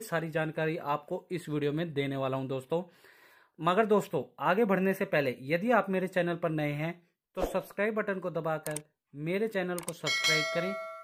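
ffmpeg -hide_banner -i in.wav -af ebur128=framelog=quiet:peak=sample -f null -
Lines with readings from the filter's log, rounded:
Integrated loudness:
  I:         -31.0 LUFS
  Threshold: -41.3 LUFS
Loudness range:
  LRA:         5.0 LU
  Threshold: -51.3 LUFS
  LRA low:   -34.0 LUFS
  LRA high:  -29.0 LUFS
Sample peak:
  Peak:      -12.0 dBFS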